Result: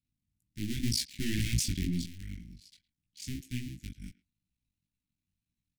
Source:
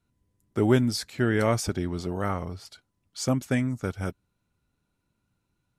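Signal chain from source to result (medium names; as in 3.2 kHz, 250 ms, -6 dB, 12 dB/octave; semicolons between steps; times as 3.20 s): cycle switcher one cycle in 2, muted; chorus 2 Hz, delay 16 ms, depth 5.9 ms; 0.83–2.06 s: waveshaping leveller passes 3; inverse Chebyshev band-stop 490–1200 Hz, stop band 50 dB; speakerphone echo 110 ms, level -18 dB; trim -4.5 dB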